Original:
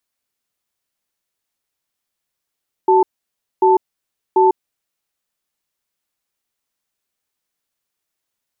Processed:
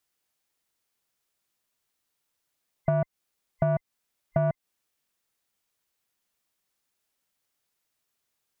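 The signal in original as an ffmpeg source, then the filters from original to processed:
-f lavfi -i "aevalsrc='0.266*(sin(2*PI*376*t)+sin(2*PI*883*t))*clip(min(mod(t,0.74),0.15-mod(t,0.74))/0.005,0,1)':duration=1.8:sample_rate=44100"
-af "afftfilt=real='real(if(between(b,1,1008),(2*floor((b-1)/48)+1)*48-b,b),0)':imag='imag(if(between(b,1,1008),(2*floor((b-1)/48)+1)*48-b,b),0)*if(between(b,1,1008),-1,1)':win_size=2048:overlap=0.75,asoftclip=type=tanh:threshold=-10dB,acompressor=threshold=-22dB:ratio=10"

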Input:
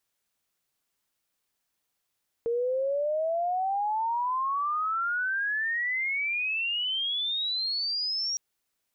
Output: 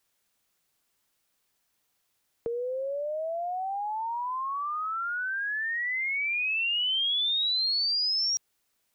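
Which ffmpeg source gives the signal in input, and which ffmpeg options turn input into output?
-f lavfi -i "aevalsrc='pow(10,(-24.5-2.5*t/5.91)/20)*sin(2*PI*460*5.91/log(5700/460)*(exp(log(5700/460)*t/5.91)-1))':duration=5.91:sample_rate=44100"
-filter_complex "[0:a]asplit=2[link_01][link_02];[link_02]alimiter=level_in=8.5dB:limit=-24dB:level=0:latency=1,volume=-8.5dB,volume=-2.5dB[link_03];[link_01][link_03]amix=inputs=2:normalize=0,acrossover=split=190|3000[link_04][link_05][link_06];[link_05]acompressor=threshold=-31dB:ratio=6[link_07];[link_04][link_07][link_06]amix=inputs=3:normalize=0"

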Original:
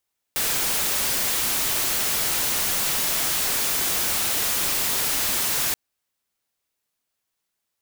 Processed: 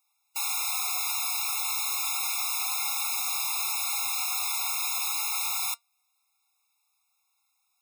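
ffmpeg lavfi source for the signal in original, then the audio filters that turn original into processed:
-f lavfi -i "anoisesrc=color=white:amplitude=0.116:duration=5.38:sample_rate=44100:seed=1"
-af "aeval=exprs='0.119*sin(PI/2*2.82*val(0)/0.119)':channel_layout=same,flanger=delay=3.4:depth=1.2:regen=81:speed=0.29:shape=sinusoidal,afftfilt=real='re*eq(mod(floor(b*sr/1024/700),2),1)':imag='im*eq(mod(floor(b*sr/1024/700),2),1)':win_size=1024:overlap=0.75"

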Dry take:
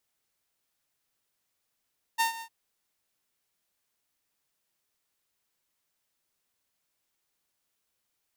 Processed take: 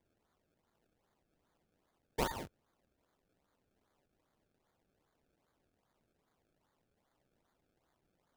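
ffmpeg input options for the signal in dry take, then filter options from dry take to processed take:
-f lavfi -i "aevalsrc='0.112*(2*mod(912*t,1)-1)':duration=0.306:sample_rate=44100,afade=type=in:duration=0.025,afade=type=out:start_time=0.025:duration=0.118:silence=0.158,afade=type=out:start_time=0.23:duration=0.076"
-filter_complex "[0:a]acrossover=split=4400[link_01][link_02];[link_01]acompressor=threshold=-37dB:ratio=6[link_03];[link_03][link_02]amix=inputs=2:normalize=0,acrusher=samples=31:mix=1:aa=0.000001:lfo=1:lforange=31:lforate=2.5"

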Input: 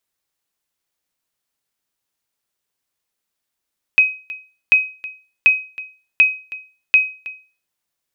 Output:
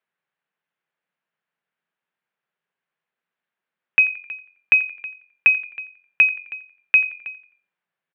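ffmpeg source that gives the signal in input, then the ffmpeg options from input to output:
-f lavfi -i "aevalsrc='0.631*(sin(2*PI*2530*mod(t,0.74))*exp(-6.91*mod(t,0.74)/0.36)+0.119*sin(2*PI*2530*max(mod(t,0.74)-0.32,0))*exp(-6.91*max(mod(t,0.74)-0.32,0)/0.36))':duration=3.7:sample_rate=44100"
-filter_complex "[0:a]highpass=frequency=160:width=0.5412,highpass=frequency=160:width=1.3066,equalizer=frequency=160:width_type=q:width=4:gain=6,equalizer=frequency=290:width_type=q:width=4:gain=-9,equalizer=frequency=1600:width_type=q:width=4:gain=5,lowpass=frequency=2800:width=0.5412,lowpass=frequency=2800:width=1.3066,asplit=4[link_01][link_02][link_03][link_04];[link_02]adelay=87,afreqshift=-45,volume=-20dB[link_05];[link_03]adelay=174,afreqshift=-90,volume=-27.1dB[link_06];[link_04]adelay=261,afreqshift=-135,volume=-34.3dB[link_07];[link_01][link_05][link_06][link_07]amix=inputs=4:normalize=0"

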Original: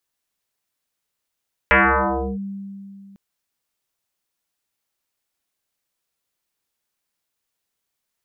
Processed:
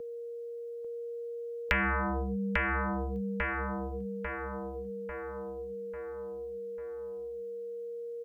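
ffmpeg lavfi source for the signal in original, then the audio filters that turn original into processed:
-f lavfi -i "aevalsrc='0.335*pow(10,-3*t/2.64)*sin(2*PI*197*t+8.4*clip(1-t/0.67,0,1)*sin(2*PI*1.35*197*t))':duration=1.45:sample_rate=44100"
-filter_complex "[0:a]aeval=exprs='val(0)+0.0141*sin(2*PI*470*n/s)':channel_layout=same,asplit=2[link_01][link_02];[link_02]adelay=845,lowpass=frequency=2500:poles=1,volume=-4dB,asplit=2[link_03][link_04];[link_04]adelay=845,lowpass=frequency=2500:poles=1,volume=0.5,asplit=2[link_05][link_06];[link_06]adelay=845,lowpass=frequency=2500:poles=1,volume=0.5,asplit=2[link_07][link_08];[link_08]adelay=845,lowpass=frequency=2500:poles=1,volume=0.5,asplit=2[link_09][link_10];[link_10]adelay=845,lowpass=frequency=2500:poles=1,volume=0.5,asplit=2[link_11][link_12];[link_12]adelay=845,lowpass=frequency=2500:poles=1,volume=0.5[link_13];[link_01][link_03][link_05][link_07][link_09][link_11][link_13]amix=inputs=7:normalize=0,acrossover=split=220|1700[link_14][link_15][link_16];[link_14]acompressor=threshold=-33dB:ratio=4[link_17];[link_15]acompressor=threshold=-38dB:ratio=4[link_18];[link_16]acompressor=threshold=-31dB:ratio=4[link_19];[link_17][link_18][link_19]amix=inputs=3:normalize=0"

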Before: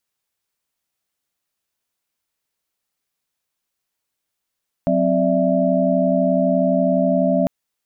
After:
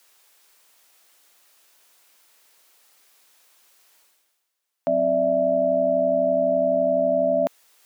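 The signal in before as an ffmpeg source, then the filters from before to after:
-f lavfi -i "aevalsrc='0.1*(sin(2*PI*185*t)+sin(2*PI*261.63*t)+sin(2*PI*587.33*t)+sin(2*PI*659.26*t))':duration=2.6:sample_rate=44100"
-af "highpass=410,areverse,acompressor=mode=upward:threshold=-40dB:ratio=2.5,areverse"

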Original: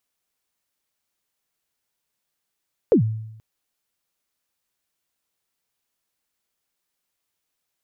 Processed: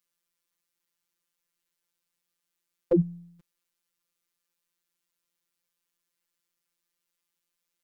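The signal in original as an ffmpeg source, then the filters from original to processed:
-f lavfi -i "aevalsrc='0.335*pow(10,-3*t/0.84)*sin(2*PI*(530*0.102/log(110/530)*(exp(log(110/530)*min(t,0.102)/0.102)-1)+110*max(t-0.102,0)))':duration=0.48:sample_rate=44100"
-af "equalizer=frequency=720:width_type=o:width=0.38:gain=-10.5,afftfilt=real='hypot(re,im)*cos(PI*b)':imag='0':win_size=1024:overlap=0.75"

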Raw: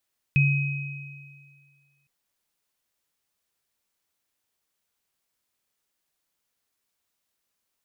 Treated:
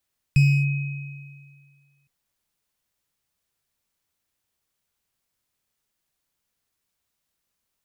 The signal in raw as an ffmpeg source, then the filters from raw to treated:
-f lavfi -i "aevalsrc='0.158*pow(10,-3*t/1.83)*sin(2*PI*141*t)+0.0891*pow(10,-3*t/2.01)*sin(2*PI*2530*t)':duration=1.71:sample_rate=44100"
-filter_complex "[0:a]acrossover=split=180[link_01][link_02];[link_01]acontrast=86[link_03];[link_02]volume=27dB,asoftclip=hard,volume=-27dB[link_04];[link_03][link_04]amix=inputs=2:normalize=0"

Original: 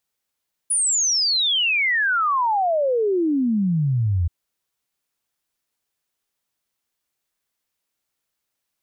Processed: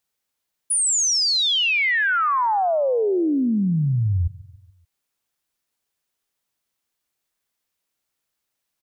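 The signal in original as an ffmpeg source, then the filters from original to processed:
-f lavfi -i "aevalsrc='0.141*clip(min(t,3.58-t)/0.01,0,1)*sin(2*PI*10000*3.58/log(81/10000)*(exp(log(81/10000)*t/3.58)-1))':duration=3.58:sample_rate=44100"
-af "aecho=1:1:143|286|429|572:0.0891|0.049|0.027|0.0148"

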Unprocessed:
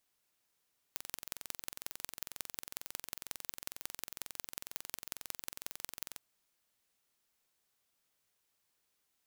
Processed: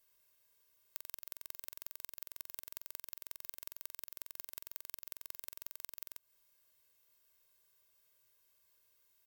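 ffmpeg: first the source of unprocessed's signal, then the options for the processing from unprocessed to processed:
-f lavfi -i "aevalsrc='0.316*eq(mod(n,1995),0)*(0.5+0.5*eq(mod(n,7980),0))':duration=5.24:sample_rate=44100"
-af "equalizer=frequency=16000:width_type=o:width=0.31:gain=14,aecho=1:1:1.9:0.79,acompressor=threshold=-40dB:ratio=6"

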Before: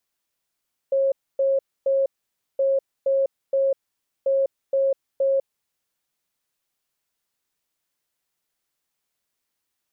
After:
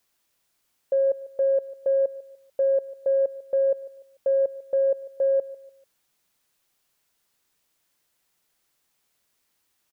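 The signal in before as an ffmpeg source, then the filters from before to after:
-f lavfi -i "aevalsrc='0.141*sin(2*PI*543*t)*clip(min(mod(mod(t,1.67),0.47),0.2-mod(mod(t,1.67),0.47))/0.005,0,1)*lt(mod(t,1.67),1.41)':duration=5.01:sample_rate=44100"
-af "acontrast=80,alimiter=limit=-17.5dB:level=0:latency=1:release=52,aecho=1:1:147|294|441:0.126|0.0453|0.0163"

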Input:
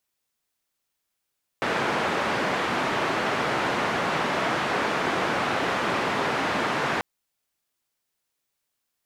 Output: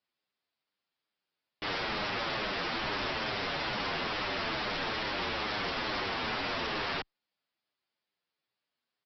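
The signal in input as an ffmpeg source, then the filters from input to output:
-f lavfi -i "anoisesrc=color=white:duration=5.39:sample_rate=44100:seed=1,highpass=frequency=150,lowpass=frequency=1500,volume=-9dB"
-filter_complex "[0:a]highpass=130,aresample=11025,aeval=exprs='0.0501*(abs(mod(val(0)/0.0501+3,4)-2)-1)':channel_layout=same,aresample=44100,asplit=2[link_01][link_02];[link_02]adelay=8.2,afreqshift=-2.3[link_03];[link_01][link_03]amix=inputs=2:normalize=1"

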